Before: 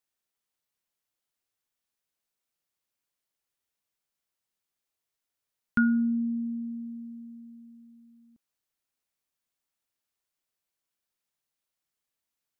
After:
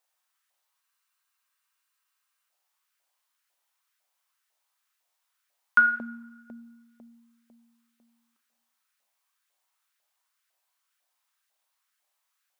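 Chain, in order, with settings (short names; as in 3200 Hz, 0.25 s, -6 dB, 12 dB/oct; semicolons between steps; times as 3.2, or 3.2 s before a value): two-slope reverb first 0.56 s, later 1.5 s, from -17 dB, DRR 4 dB; LFO high-pass saw up 2 Hz 620–1600 Hz; spectral freeze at 0.84, 1.65 s; gain +5.5 dB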